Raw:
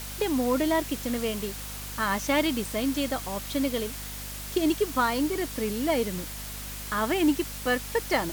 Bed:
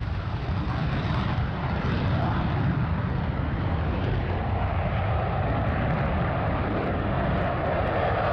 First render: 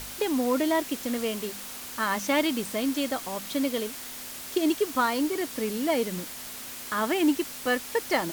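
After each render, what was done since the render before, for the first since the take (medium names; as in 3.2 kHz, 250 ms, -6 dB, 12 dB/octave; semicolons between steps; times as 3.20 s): de-hum 50 Hz, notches 4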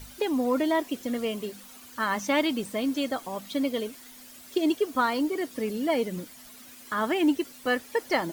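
noise reduction 12 dB, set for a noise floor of -40 dBFS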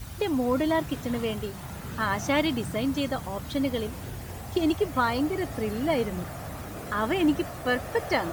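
add bed -12 dB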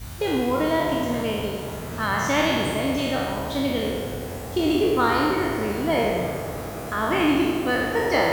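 spectral sustain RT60 1.47 s; on a send: tape echo 96 ms, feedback 90%, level -9 dB, low-pass 2.5 kHz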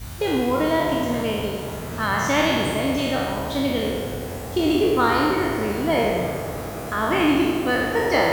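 trim +1.5 dB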